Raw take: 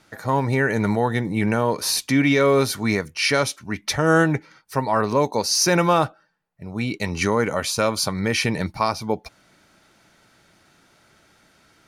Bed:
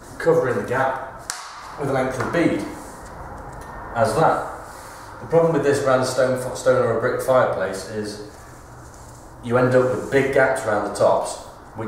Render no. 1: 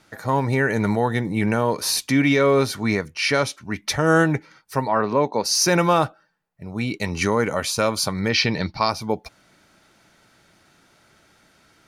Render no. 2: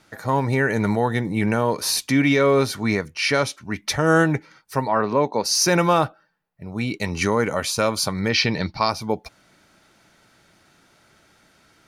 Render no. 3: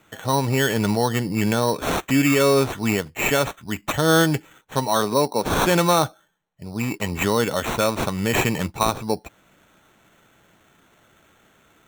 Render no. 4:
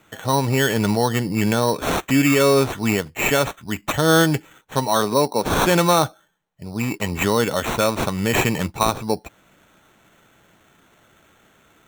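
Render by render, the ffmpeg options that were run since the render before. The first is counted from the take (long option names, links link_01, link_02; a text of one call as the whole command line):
ffmpeg -i in.wav -filter_complex "[0:a]asettb=1/sr,asplit=3[link_01][link_02][link_03];[link_01]atrim=end=2.364[link_04];[link_02]atrim=start=2.36:end=3.72,asetpts=PTS-STARTPTS,afade=type=in:duration=0.004:curve=qsin,afade=type=out:start_time=1.356:duration=0.004:curve=qsin,highshelf=frequency=7600:gain=-8[link_05];[link_03]atrim=start=3.716[link_06];[link_04][link_05]acrossfade=duration=0.004:curve1=hsin:curve2=qsin[link_07];[link_07][link_06]acrossfade=duration=0.004:curve1=qsin:curve2=hsin,asplit=3[link_08][link_09][link_10];[link_08]afade=type=out:start_time=4.87:duration=0.02[link_11];[link_09]highpass=130,lowpass=3200,afade=type=in:start_time=4.87:duration=0.02,afade=type=out:start_time=5.44:duration=0.02[link_12];[link_10]afade=type=in:start_time=5.44:duration=0.02[link_13];[link_11][link_12][link_13]amix=inputs=3:normalize=0,asettb=1/sr,asplit=3[link_14][link_15][link_16];[link_14]atrim=end=8.294[link_17];[link_15]atrim=start=8.29:end=8.9,asetpts=PTS-STARTPTS,afade=type=in:duration=0.004:curve=qsin,afade=type=out:start_time=0.606:duration=0.004:curve=qsin,highshelf=frequency=6500:width_type=q:width=3:gain=-12.5[link_18];[link_16]atrim=start=8.896[link_19];[link_17][link_18]acrossfade=duration=0.004:curve1=hsin:curve2=qsin[link_20];[link_20][link_19]acrossfade=duration=0.004:curve1=qsin:curve2=hsin" out.wav
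ffmpeg -i in.wav -filter_complex "[0:a]asettb=1/sr,asplit=3[link_01][link_02][link_03];[link_01]atrim=end=6.014[link_04];[link_02]atrim=start=6.01:end=6.72,asetpts=PTS-STARTPTS,afade=type=in:duration=0.004:curve=qsin,afade=type=out:start_time=0.706:duration=0.004:curve=qsin,equalizer=frequency=7300:width=1.5:gain=-6.5[link_05];[link_03]atrim=start=6.716[link_06];[link_04][link_05]acrossfade=duration=0.004:curve1=hsin:curve2=qsin[link_07];[link_07][link_06]acrossfade=duration=0.004:curve1=qsin:curve2=hsin" out.wav
ffmpeg -i in.wav -af "acrusher=samples=9:mix=1:aa=0.000001" out.wav
ffmpeg -i in.wav -af "volume=1.5dB" out.wav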